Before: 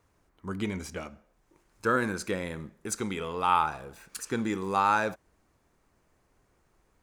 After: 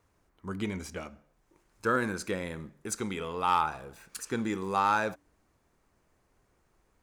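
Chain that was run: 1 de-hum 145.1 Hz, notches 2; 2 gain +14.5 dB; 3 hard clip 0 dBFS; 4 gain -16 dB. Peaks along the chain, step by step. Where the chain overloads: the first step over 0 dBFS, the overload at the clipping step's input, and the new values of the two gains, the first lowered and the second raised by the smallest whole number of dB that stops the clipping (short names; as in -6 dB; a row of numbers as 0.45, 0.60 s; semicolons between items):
-10.0, +4.5, 0.0, -16.0 dBFS; step 2, 4.5 dB; step 2 +9.5 dB, step 4 -11 dB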